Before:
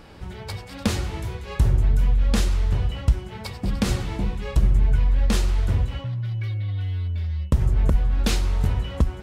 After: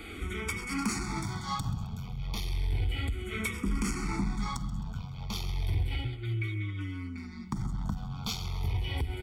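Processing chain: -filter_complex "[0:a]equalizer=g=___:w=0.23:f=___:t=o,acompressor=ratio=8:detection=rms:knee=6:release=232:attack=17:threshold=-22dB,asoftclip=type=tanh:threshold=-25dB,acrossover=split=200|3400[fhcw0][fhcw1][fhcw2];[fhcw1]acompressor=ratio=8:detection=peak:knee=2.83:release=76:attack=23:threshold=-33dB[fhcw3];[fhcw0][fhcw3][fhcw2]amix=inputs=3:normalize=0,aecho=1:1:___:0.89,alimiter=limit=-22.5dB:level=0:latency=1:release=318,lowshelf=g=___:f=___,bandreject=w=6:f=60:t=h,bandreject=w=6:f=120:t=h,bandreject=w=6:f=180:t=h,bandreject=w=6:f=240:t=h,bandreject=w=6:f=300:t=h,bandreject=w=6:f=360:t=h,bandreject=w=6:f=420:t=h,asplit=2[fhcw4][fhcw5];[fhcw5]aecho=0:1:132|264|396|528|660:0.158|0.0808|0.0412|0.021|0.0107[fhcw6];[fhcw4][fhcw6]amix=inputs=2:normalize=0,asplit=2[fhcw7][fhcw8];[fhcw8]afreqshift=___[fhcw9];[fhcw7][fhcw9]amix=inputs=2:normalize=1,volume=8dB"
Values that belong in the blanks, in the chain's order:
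-10.5, 1000, 0.9, -10, 140, -0.32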